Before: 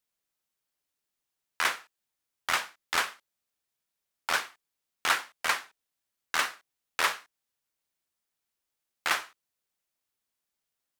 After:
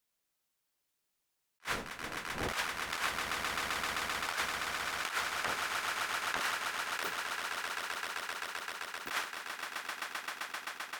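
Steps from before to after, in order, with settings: 1.61–2.52 s: wind noise 610 Hz -39 dBFS; 5.35–6.41 s: low-pass that closes with the level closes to 410 Hz, closed at -28 dBFS; 7.03–9.11 s: inverse Chebyshev band-stop 1.2–7.7 kHz, stop band 60 dB; echo with a slow build-up 130 ms, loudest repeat 8, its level -15.5 dB; compressor with a negative ratio -33 dBFS, ratio -1; attacks held to a fixed rise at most 490 dB/s

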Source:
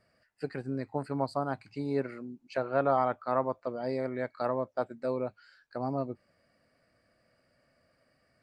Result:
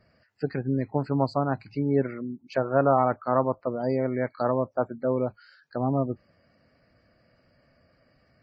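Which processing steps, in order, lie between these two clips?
spectral gate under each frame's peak -30 dB strong; bass shelf 280 Hz +7.5 dB; trim +4 dB; Vorbis 48 kbps 16 kHz

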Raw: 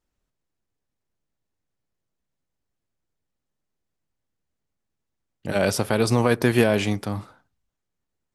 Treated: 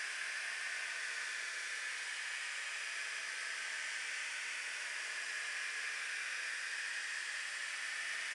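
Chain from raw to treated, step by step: spectral levelling over time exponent 0.4; resonant high-pass 1.9 kHz, resonance Q 3.7; resampled via 22.05 kHz; on a send: frequency-shifting echo 255 ms, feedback 64%, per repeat -49 Hz, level -19.5 dB; on the sum: Paulstretch 49×, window 0.05 s, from 1.13 s; trim +2.5 dB

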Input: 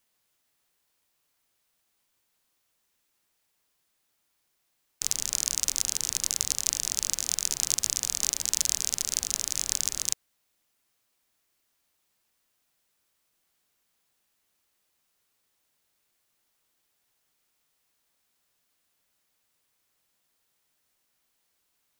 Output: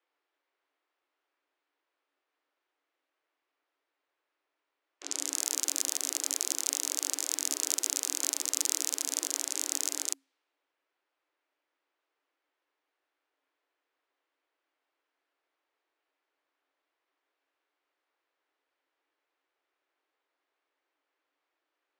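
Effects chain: transient shaper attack -5 dB, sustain 0 dB; frequency shift +270 Hz; level-controlled noise filter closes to 2.1 kHz, open at -30.5 dBFS

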